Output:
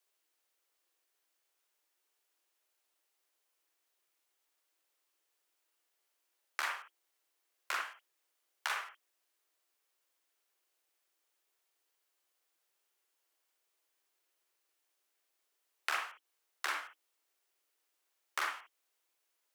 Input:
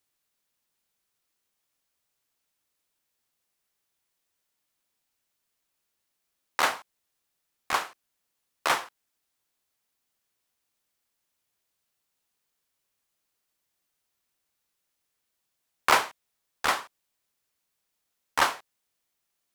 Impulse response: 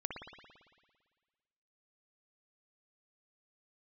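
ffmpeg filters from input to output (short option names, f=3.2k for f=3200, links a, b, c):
-filter_complex "[0:a]acompressor=threshold=-34dB:ratio=4,afreqshift=300[a];[1:a]atrim=start_sample=2205,atrim=end_sample=3528[b];[a][b]afir=irnorm=-1:irlink=0,volume=1dB"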